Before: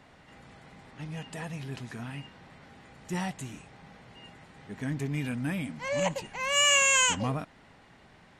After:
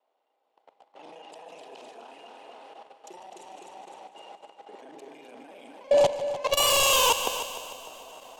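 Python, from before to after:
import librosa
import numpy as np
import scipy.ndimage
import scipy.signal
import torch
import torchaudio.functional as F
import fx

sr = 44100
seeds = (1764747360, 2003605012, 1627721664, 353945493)

p1 = fx.local_reverse(x, sr, ms=33.0)
p2 = scipy.signal.sosfilt(scipy.signal.butter(4, 460.0, 'highpass', fs=sr, output='sos'), p1)
p3 = fx.high_shelf(p2, sr, hz=5200.0, db=-11.5)
p4 = fx.fold_sine(p3, sr, drive_db=12, ceiling_db=-16.0)
p5 = p3 + (p4 * librosa.db_to_amplitude(-5.0))
p6 = fx.echo_feedback(p5, sr, ms=255, feedback_pct=58, wet_db=-7.0)
p7 = fx.level_steps(p6, sr, step_db=21)
p8 = fx.curve_eq(p7, sr, hz=(860.0, 1800.0, 3000.0), db=(0, -17, -3))
p9 = fx.echo_heads(p8, sr, ms=150, heads='first and second', feedback_pct=55, wet_db=-13.5)
y = fx.band_widen(p9, sr, depth_pct=40)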